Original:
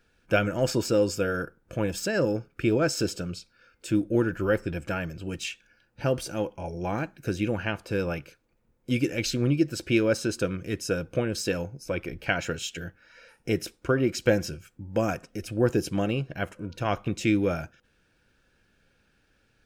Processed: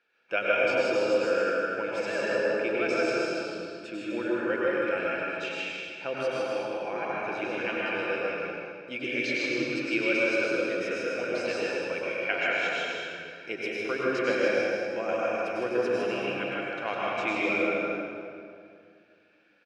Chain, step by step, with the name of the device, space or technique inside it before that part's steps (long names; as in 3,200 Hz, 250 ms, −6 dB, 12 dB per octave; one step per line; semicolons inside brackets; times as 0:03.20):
station announcement (band-pass filter 480–3,800 Hz; parametric band 2,400 Hz +6 dB 0.36 octaves; loudspeakers that aren't time-aligned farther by 54 metres −4 dB, 85 metres −10 dB; convolution reverb RT60 2.3 s, pre-delay 90 ms, DRR −5 dB)
parametric band 7,000 Hz −3 dB 0.2 octaves
level −5 dB